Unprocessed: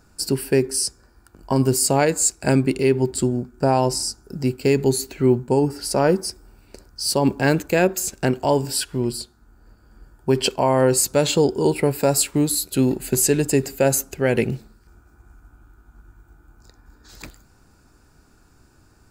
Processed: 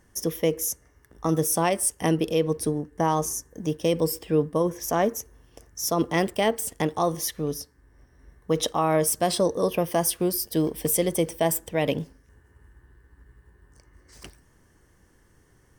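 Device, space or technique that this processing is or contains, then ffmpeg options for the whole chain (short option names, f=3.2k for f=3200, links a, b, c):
nightcore: -af "asetrate=53361,aresample=44100,volume=-5dB"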